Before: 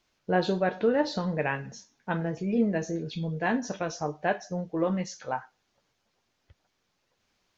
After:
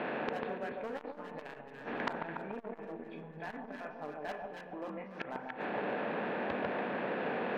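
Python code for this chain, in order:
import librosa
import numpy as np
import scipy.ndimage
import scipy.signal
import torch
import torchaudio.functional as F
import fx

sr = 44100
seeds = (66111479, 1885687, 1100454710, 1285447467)

p1 = fx.bin_compress(x, sr, power=0.4)
p2 = scipy.signal.sosfilt(scipy.signal.butter(6, 2800.0, 'lowpass', fs=sr, output='sos'), p1)
p3 = fx.noise_reduce_blind(p2, sr, reduce_db=13)
p4 = fx.highpass(p3, sr, hz=310.0, slope=6)
p5 = fx.level_steps(p4, sr, step_db=23)
p6 = p4 + F.gain(torch.from_numpy(p5), -1.0).numpy()
p7 = np.clip(10.0 ** (19.0 / 20.0) * p6, -1.0, 1.0) / 10.0 ** (19.0 / 20.0)
p8 = fx.gate_flip(p7, sr, shuts_db=-34.0, range_db=-31)
p9 = p8 + fx.echo_alternate(p8, sr, ms=144, hz=940.0, feedback_pct=60, wet_db=-2.5, dry=0)
p10 = fx.rev_spring(p9, sr, rt60_s=3.0, pass_ms=(35,), chirp_ms=80, drr_db=12.5)
p11 = fx.transformer_sat(p10, sr, knee_hz=2500.0)
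y = F.gain(torch.from_numpy(p11), 17.0).numpy()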